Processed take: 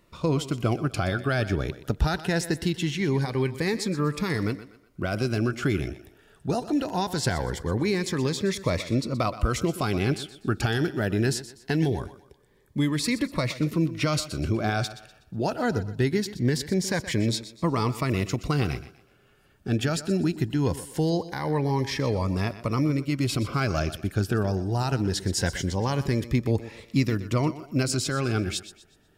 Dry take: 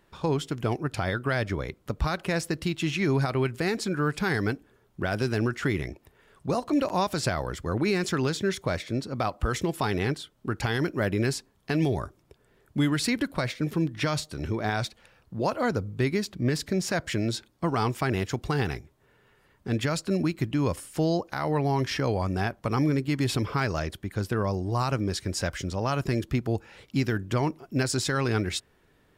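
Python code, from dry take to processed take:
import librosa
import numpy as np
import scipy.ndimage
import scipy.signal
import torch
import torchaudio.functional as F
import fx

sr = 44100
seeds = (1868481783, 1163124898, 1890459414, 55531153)

p1 = fx.rider(x, sr, range_db=4, speed_s=0.5)
p2 = p1 + fx.echo_thinned(p1, sr, ms=123, feedback_pct=35, hz=160.0, wet_db=-14.0, dry=0)
p3 = fx.notch_cascade(p2, sr, direction='rising', hz=0.22)
y = F.gain(torch.from_numpy(p3), 2.5).numpy()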